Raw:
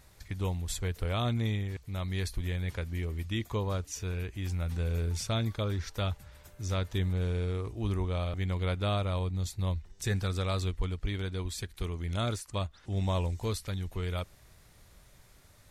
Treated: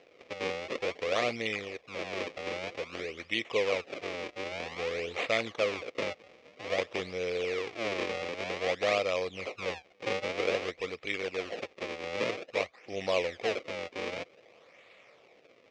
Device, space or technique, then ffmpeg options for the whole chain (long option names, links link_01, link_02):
circuit-bent sampling toy: -af "acrusher=samples=37:mix=1:aa=0.000001:lfo=1:lforange=59.2:lforate=0.52,highpass=500,equalizer=frequency=500:width_type=q:width=4:gain=8,equalizer=frequency=920:width_type=q:width=4:gain=-9,equalizer=frequency=1500:width_type=q:width=4:gain=-9,equalizer=frequency=2300:width_type=q:width=4:gain=8,equalizer=frequency=4300:width_type=q:width=4:gain=-3,lowpass=frequency=5300:width=0.5412,lowpass=frequency=5300:width=1.3066,volume=6.5dB"